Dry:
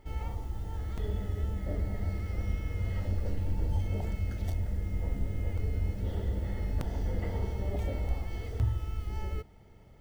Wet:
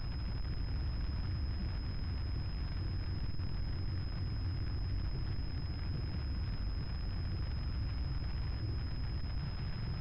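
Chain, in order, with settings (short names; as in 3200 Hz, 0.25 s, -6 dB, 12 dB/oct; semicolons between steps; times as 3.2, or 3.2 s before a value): infinite clipping; elliptic band-stop 190–1400 Hz, stop band 40 dB; reverb removal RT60 0.7 s; ten-band EQ 125 Hz +9 dB, 250 Hz -6 dB, 500 Hz -4 dB, 1000 Hz -10 dB, 2000 Hz -12 dB; limiter -31 dBFS, peak gain reduction 10 dB; soft clip -37 dBFS, distortion -15 dB; bit-crush 9-bit; multi-head echo 0.243 s, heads first and second, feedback 47%, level -13.5 dB; pulse-width modulation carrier 5100 Hz; gain +3.5 dB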